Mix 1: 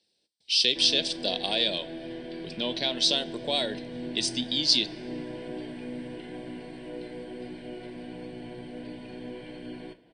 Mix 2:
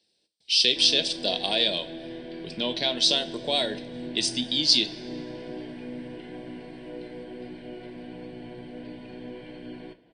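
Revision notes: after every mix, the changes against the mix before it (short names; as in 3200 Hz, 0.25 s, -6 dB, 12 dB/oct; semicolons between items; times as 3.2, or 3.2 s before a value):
speech: send +8.0 dB; background: add air absorption 59 m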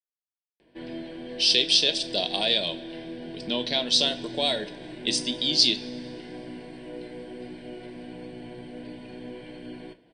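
speech: entry +0.90 s; background: remove air absorption 59 m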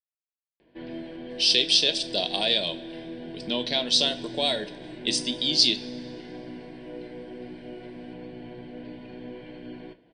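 background: add air absorption 140 m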